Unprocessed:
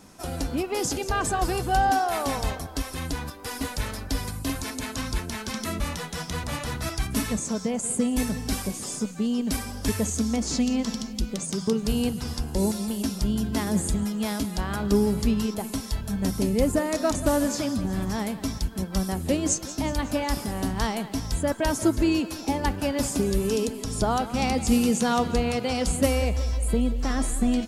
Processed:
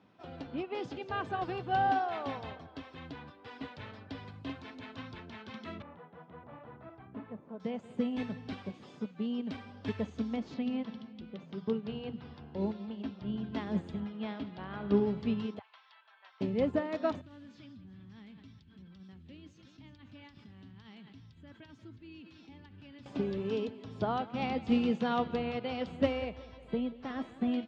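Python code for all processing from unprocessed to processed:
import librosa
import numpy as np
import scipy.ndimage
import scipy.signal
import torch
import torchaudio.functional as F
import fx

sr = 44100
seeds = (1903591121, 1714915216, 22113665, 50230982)

y = fx.chain(x, sr, fx.lowpass(hz=1000.0, slope=12),
    fx.low_shelf(hz=240.0, db=-10.0), at=(5.82, 7.6))
y = fx.chain(y, sr, fx.air_absorb(metres=130.0),
    fx.hum_notches(base_hz=60, count=7), at=(10.54, 13.44))
y = fx.chain(y, sr, fx.lowpass(hz=4200.0, slope=12),
    fx.room_flutter(wall_m=11.9, rt60_s=0.33), at=(14.0, 15.06))
y = fx.chain(y, sr, fx.cheby2_highpass(hz=220.0, order=4, stop_db=70),
    fx.air_absorb(metres=190.0), at=(15.59, 16.41))
y = fx.chain(y, sr, fx.tone_stack(knobs='6-0-2'),
    fx.env_flatten(amount_pct=70), at=(17.21, 23.06))
y = scipy.signal.sosfilt(scipy.signal.ellip(3, 1.0, 60, [100.0, 3400.0], 'bandpass', fs=sr, output='sos'), y)
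y = fx.upward_expand(y, sr, threshold_db=-33.0, expansion=1.5)
y = F.gain(torch.from_numpy(y), -4.5).numpy()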